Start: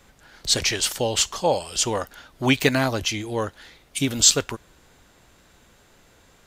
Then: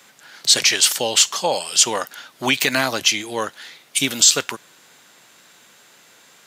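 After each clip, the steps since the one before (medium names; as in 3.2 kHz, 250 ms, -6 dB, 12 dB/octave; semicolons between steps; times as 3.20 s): high-pass 140 Hz 24 dB/octave; peak limiter -11 dBFS, peak gain reduction 8 dB; tilt shelf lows -6 dB, about 860 Hz; trim +3.5 dB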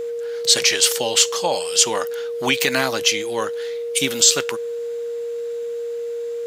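whistle 470 Hz -23 dBFS; trim -1 dB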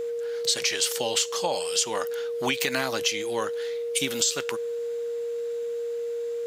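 compression 5:1, threshold -18 dBFS, peak gain reduction 8.5 dB; trim -3.5 dB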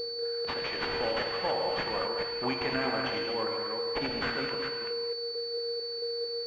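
chunks repeated in reverse 223 ms, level -5 dB; gated-style reverb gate 270 ms flat, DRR 1.5 dB; class-D stage that switches slowly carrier 4.5 kHz; trim -5 dB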